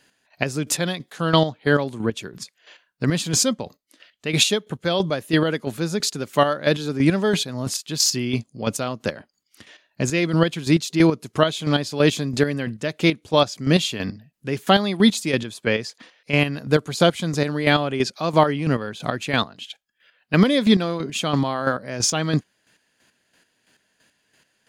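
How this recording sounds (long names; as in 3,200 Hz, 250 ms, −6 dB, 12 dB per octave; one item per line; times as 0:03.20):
chopped level 3 Hz, depth 60%, duty 30%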